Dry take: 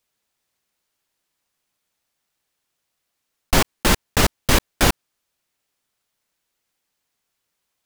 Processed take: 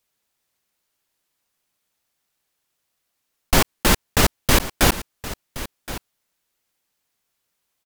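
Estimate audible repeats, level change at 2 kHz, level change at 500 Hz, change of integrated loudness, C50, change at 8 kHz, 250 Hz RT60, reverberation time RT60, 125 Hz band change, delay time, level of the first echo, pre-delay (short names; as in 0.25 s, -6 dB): 1, 0.0 dB, 0.0 dB, +0.5 dB, none, +1.0 dB, none, none, 0.0 dB, 1.071 s, -15.0 dB, none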